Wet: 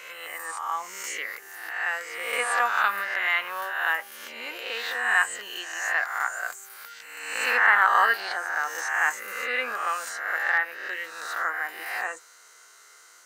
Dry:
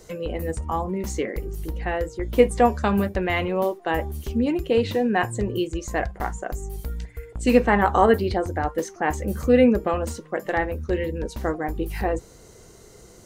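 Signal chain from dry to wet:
peak hold with a rise ahead of every peak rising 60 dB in 1.10 s
high-pass with resonance 1,400 Hz, resonance Q 2.8
level −3 dB

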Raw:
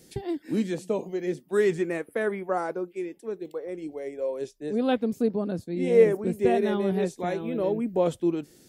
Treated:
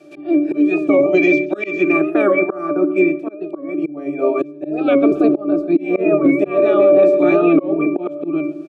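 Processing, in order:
ceiling on every frequency bin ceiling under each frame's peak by 19 dB
on a send at −20 dB: convolution reverb RT60 0.45 s, pre-delay 46 ms
on the sum: gain on a spectral selection 0:01.14–0:01.92, 1,900–7,100 Hz +10 dB
resonances in every octave D, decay 0.27 s
repeating echo 133 ms, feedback 44%, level −23 dB
volume swells 510 ms
high-pass with resonance 350 Hz, resonance Q 3.6
boost into a limiter +35.5 dB
wow of a warped record 45 rpm, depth 100 cents
level −3.5 dB

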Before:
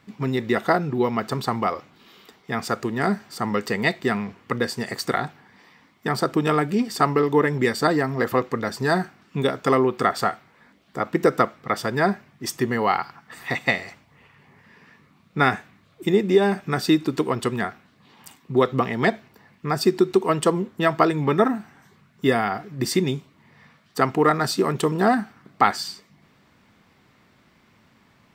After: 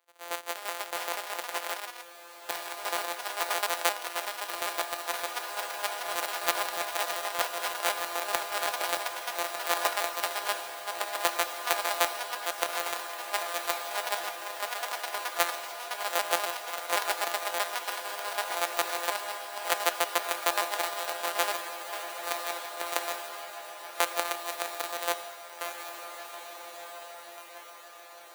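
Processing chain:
samples sorted by size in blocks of 256 samples
high-pass filter 550 Hz 24 dB per octave
high-shelf EQ 11,000 Hz +6 dB
notch filter 5,300 Hz, Q 8.5
output level in coarse steps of 12 dB
harmonic and percussive parts rebalanced harmonic +5 dB
downward compressor 5 to 1, threshold −26 dBFS, peak gain reduction 12 dB
square-wave tremolo 6.5 Hz, depth 65%, duty 30%
delay with pitch and tempo change per echo 392 ms, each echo +3 semitones, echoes 2
feedback delay with all-pass diffusion 1,943 ms, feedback 58%, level −6 dB
multiband upward and downward expander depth 40%
level +3 dB

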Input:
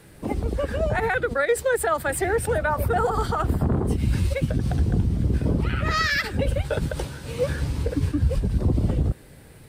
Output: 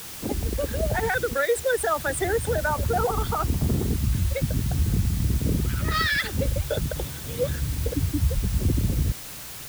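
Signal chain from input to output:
spectral envelope exaggerated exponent 1.5
parametric band 3,500 Hz +15 dB 0.26 octaves
background noise white −37 dBFS
level −1.5 dB

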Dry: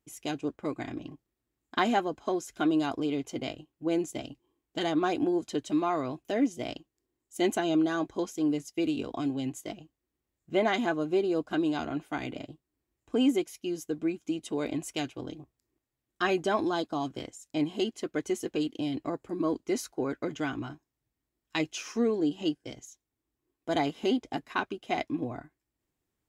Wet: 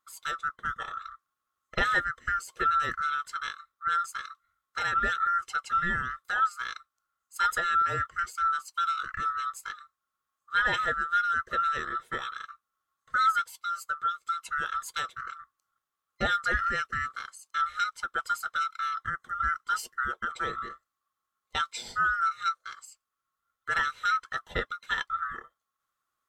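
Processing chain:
neighbouring bands swapped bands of 1,000 Hz

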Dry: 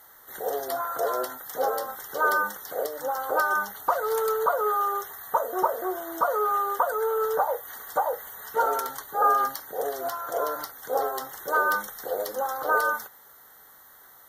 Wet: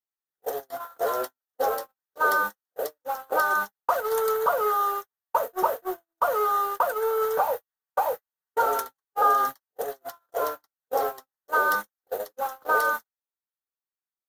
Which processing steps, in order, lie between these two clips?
converter with a step at zero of −36 dBFS
noise gate −26 dBFS, range −60 dB

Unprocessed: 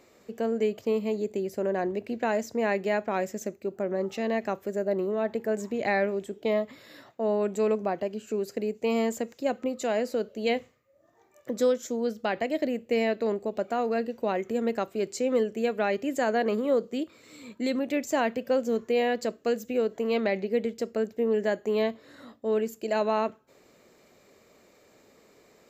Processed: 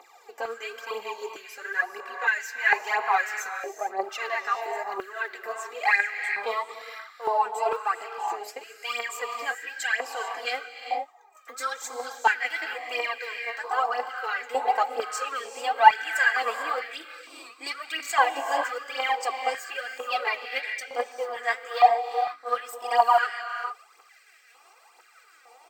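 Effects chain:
pitch glide at a constant tempo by +2 semitones starting unshifted
comb filter 2.5 ms, depth 73%
phase shifter 1 Hz, delay 4.4 ms, feedback 74%
reverb whose tail is shaped and stops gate 470 ms rising, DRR 6.5 dB
high-pass on a step sequencer 2.2 Hz 850–1,700 Hz
level −1 dB

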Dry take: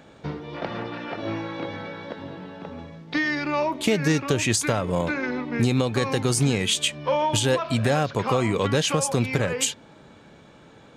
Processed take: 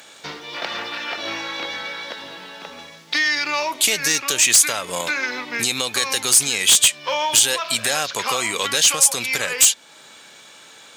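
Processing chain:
first difference
in parallel at −1 dB: downward compressor, threshold −42 dBFS, peak gain reduction 20 dB
on the sum: sine wavefolder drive 10 dB, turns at −8.5 dBFS
level +1.5 dB

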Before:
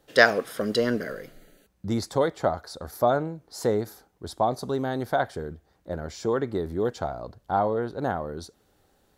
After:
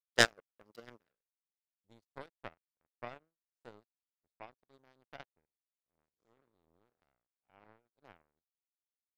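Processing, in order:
0:05.45–0:07.86: spectrum smeared in time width 188 ms
power curve on the samples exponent 3

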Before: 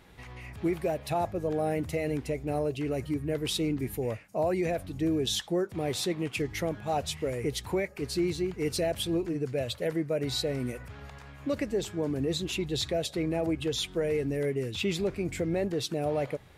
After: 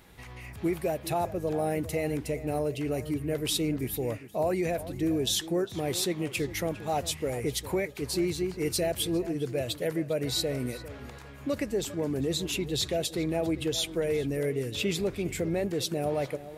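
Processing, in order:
high-shelf EQ 8,400 Hz +10.5 dB
tape delay 403 ms, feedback 34%, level −13.5 dB, low-pass 2,700 Hz

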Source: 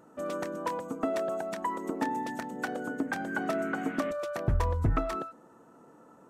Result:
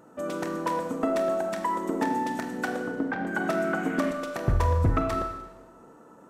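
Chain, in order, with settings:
0:02.83–0:03.27: high-frequency loss of the air 330 metres
four-comb reverb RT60 1.1 s, combs from 33 ms, DRR 5 dB
level +3 dB

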